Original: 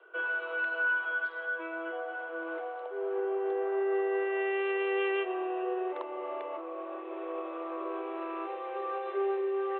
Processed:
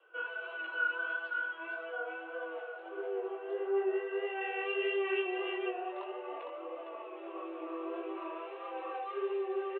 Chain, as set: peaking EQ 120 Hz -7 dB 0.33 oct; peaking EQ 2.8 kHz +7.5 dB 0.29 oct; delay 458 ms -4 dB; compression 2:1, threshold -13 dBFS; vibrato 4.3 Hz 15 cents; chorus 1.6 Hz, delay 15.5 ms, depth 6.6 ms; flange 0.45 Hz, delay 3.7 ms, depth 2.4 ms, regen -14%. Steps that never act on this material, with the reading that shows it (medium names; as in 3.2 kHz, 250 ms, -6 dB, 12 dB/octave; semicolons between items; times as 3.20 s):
peaking EQ 120 Hz: input has nothing below 320 Hz; compression, threshold -13 dBFS: peak at its input -18.0 dBFS